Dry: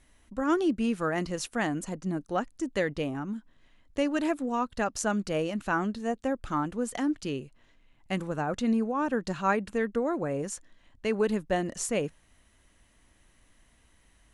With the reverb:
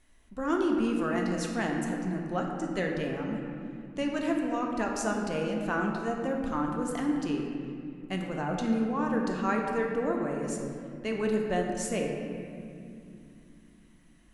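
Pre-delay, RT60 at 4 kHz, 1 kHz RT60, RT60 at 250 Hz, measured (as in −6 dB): 3 ms, 1.6 s, 2.3 s, 4.6 s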